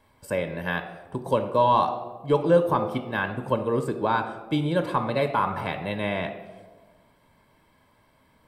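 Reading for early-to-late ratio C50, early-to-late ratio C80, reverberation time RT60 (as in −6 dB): 10.0 dB, 12.0 dB, 1.3 s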